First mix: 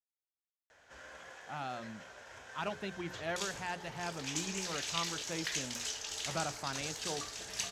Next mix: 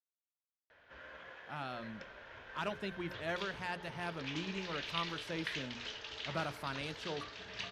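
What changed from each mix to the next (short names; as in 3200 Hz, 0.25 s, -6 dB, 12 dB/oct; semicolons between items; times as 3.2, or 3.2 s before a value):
first sound: add LPF 3700 Hz 24 dB/oct; second sound: entry -1.55 s; master: add bell 770 Hz -7 dB 0.2 oct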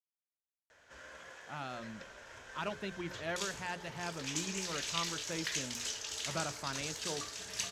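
first sound: remove LPF 3700 Hz 24 dB/oct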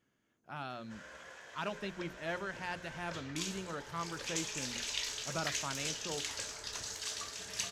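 speech: entry -1.00 s; second sound +4.5 dB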